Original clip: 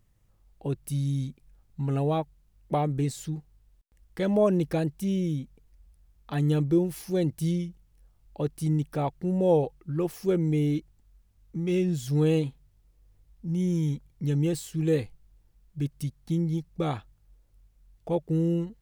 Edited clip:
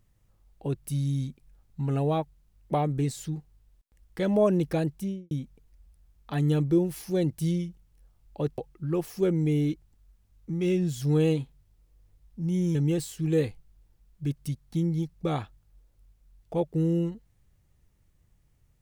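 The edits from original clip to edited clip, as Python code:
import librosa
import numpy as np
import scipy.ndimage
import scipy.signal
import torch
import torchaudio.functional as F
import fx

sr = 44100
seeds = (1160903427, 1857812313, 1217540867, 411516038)

y = fx.studio_fade_out(x, sr, start_s=4.93, length_s=0.38)
y = fx.edit(y, sr, fx.cut(start_s=8.58, length_s=1.06),
    fx.cut(start_s=13.81, length_s=0.49), tone=tone)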